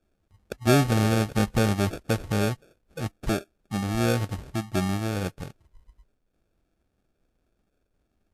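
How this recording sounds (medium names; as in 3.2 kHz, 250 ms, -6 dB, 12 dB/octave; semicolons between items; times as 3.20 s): aliases and images of a low sample rate 1 kHz, jitter 0%; Vorbis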